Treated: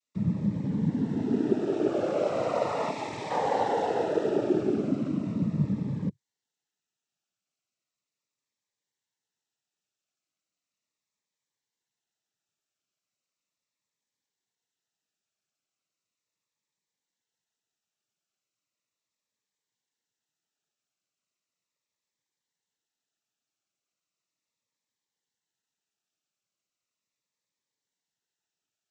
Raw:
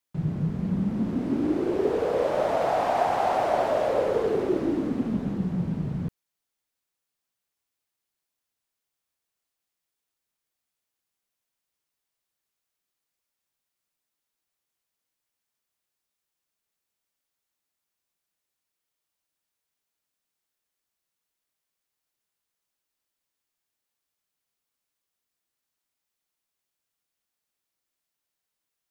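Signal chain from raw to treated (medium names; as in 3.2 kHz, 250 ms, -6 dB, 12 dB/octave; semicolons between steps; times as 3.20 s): time-frequency box 2.90–3.30 s, 450–1800 Hz -10 dB; noise-vocoded speech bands 12; Shepard-style phaser falling 0.37 Hz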